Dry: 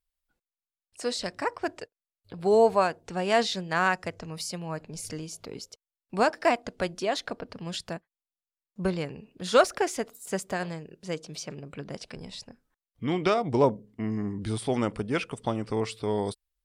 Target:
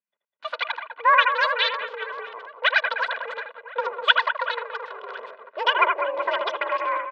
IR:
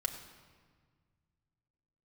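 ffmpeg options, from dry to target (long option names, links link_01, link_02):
-filter_complex "[0:a]asetrate=103194,aresample=44100,aecho=1:1:2.1:0.75,acrossover=split=2500[link_01][link_02];[link_01]aecho=1:1:80|200|380|650|1055:0.631|0.398|0.251|0.158|0.1[link_03];[link_02]aeval=exprs='val(0)*gte(abs(val(0)),0.0141)':channel_layout=same[link_04];[link_03][link_04]amix=inputs=2:normalize=0,highpass=frequency=160:width_type=q:width=0.5412,highpass=frequency=160:width_type=q:width=1.307,lowpass=frequency=3500:width_type=q:width=0.5176,lowpass=frequency=3500:width_type=q:width=0.7071,lowpass=frequency=3500:width_type=q:width=1.932,afreqshift=66,aemphasis=mode=production:type=riaa"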